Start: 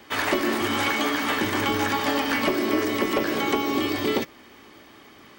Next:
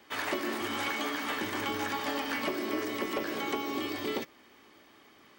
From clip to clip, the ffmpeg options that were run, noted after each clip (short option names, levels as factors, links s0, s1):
-af "lowshelf=f=170:g=-6.5,volume=0.376"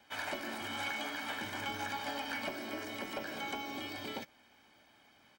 -af "aecho=1:1:1.3:0.59,volume=0.473"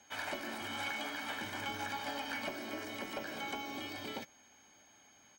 -af "aeval=exprs='val(0)+0.000708*sin(2*PI*6500*n/s)':c=same,volume=0.891"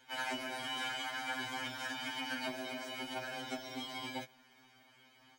-af "afftfilt=real='re*2.45*eq(mod(b,6),0)':imag='im*2.45*eq(mod(b,6),0)':win_size=2048:overlap=0.75,volume=1.58"